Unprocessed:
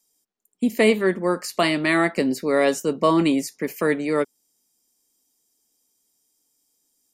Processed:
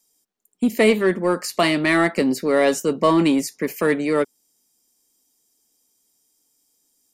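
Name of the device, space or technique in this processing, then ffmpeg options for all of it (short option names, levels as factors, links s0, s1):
parallel distortion: -filter_complex "[0:a]asplit=2[s0][s1];[s1]asoftclip=type=hard:threshold=0.0944,volume=0.422[s2];[s0][s2]amix=inputs=2:normalize=0"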